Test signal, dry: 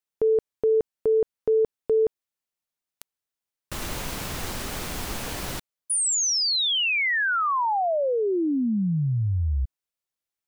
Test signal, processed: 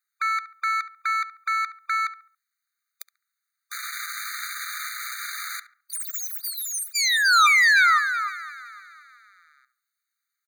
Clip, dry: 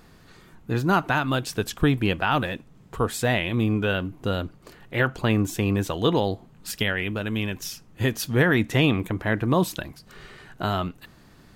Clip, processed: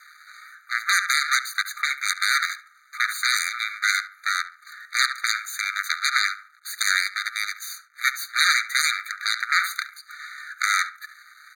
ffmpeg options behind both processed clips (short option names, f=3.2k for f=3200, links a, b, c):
-filter_complex "[0:a]equalizer=f=930:w=0.58:g=8.5,aeval=exprs='max(val(0),0)':c=same,aeval=exprs='0.841*(cos(1*acos(clip(val(0)/0.841,-1,1)))-cos(1*PI/2))+0.237*(cos(8*acos(clip(val(0)/0.841,-1,1)))-cos(8*PI/2))':c=same,aeval=exprs='1.12*sin(PI/2*1.41*val(0)/1.12)':c=same,asplit=2[a][b];[b]adelay=70,lowpass=f=1.6k:p=1,volume=-11dB,asplit=2[c][d];[d]adelay=70,lowpass=f=1.6k:p=1,volume=0.42,asplit=2[e][f];[f]adelay=70,lowpass=f=1.6k:p=1,volume=0.42,asplit=2[g][h];[h]adelay=70,lowpass=f=1.6k:p=1,volume=0.42[i];[c][e][g][i]amix=inputs=4:normalize=0[j];[a][j]amix=inputs=2:normalize=0,alimiter=level_in=5.5dB:limit=-1dB:release=50:level=0:latency=1,afftfilt=real='re*eq(mod(floor(b*sr/1024/1200),2),1)':imag='im*eq(mod(floor(b*sr/1024/1200),2),1)':win_size=1024:overlap=0.75"